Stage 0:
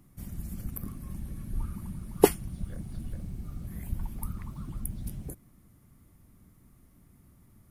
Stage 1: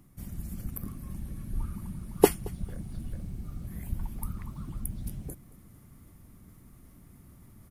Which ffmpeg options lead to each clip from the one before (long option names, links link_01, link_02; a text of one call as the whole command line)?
ffmpeg -i in.wav -af "aecho=1:1:224|448:0.0668|0.018,areverse,acompressor=mode=upward:threshold=-45dB:ratio=2.5,areverse" out.wav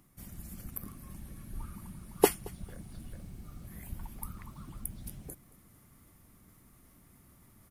ffmpeg -i in.wav -af "lowshelf=frequency=380:gain=-9" out.wav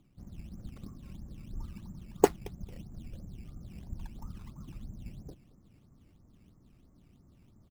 ffmpeg -i in.wav -af "aresample=16000,adynamicsmooth=sensitivity=5.5:basefreq=770,aresample=44100,acrusher=samples=12:mix=1:aa=0.000001:lfo=1:lforange=12:lforate=3,volume=1dB" out.wav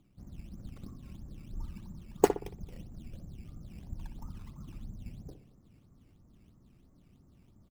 ffmpeg -i in.wav -filter_complex "[0:a]asplit=2[link_01][link_02];[link_02]adelay=61,lowpass=frequency=1600:poles=1,volume=-9dB,asplit=2[link_03][link_04];[link_04]adelay=61,lowpass=frequency=1600:poles=1,volume=0.38,asplit=2[link_05][link_06];[link_06]adelay=61,lowpass=frequency=1600:poles=1,volume=0.38,asplit=2[link_07][link_08];[link_08]adelay=61,lowpass=frequency=1600:poles=1,volume=0.38[link_09];[link_01][link_03][link_05][link_07][link_09]amix=inputs=5:normalize=0,volume=-1dB" out.wav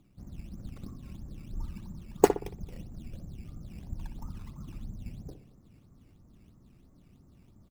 ffmpeg -i in.wav -af "bandreject=frequency=3100:width=26,volume=3dB" out.wav